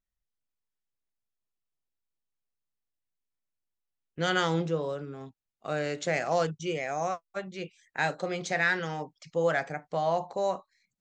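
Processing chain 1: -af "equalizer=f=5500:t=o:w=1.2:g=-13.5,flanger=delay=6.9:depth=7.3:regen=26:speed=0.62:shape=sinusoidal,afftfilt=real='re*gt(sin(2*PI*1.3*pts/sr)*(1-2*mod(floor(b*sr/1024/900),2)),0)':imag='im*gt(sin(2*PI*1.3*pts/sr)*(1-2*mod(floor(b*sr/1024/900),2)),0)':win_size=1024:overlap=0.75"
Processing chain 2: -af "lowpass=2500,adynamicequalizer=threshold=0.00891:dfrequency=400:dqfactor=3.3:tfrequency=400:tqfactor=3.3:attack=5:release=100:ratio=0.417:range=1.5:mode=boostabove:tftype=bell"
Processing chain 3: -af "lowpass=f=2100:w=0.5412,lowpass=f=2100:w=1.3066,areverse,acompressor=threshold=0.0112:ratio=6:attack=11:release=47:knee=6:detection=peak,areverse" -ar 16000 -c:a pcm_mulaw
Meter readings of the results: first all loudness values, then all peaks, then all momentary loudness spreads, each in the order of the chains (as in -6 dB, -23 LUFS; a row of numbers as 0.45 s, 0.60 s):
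-37.0 LUFS, -30.5 LUFS, -41.0 LUFS; -19.5 dBFS, -14.5 dBFS, -25.5 dBFS; 16 LU, 12 LU, 7 LU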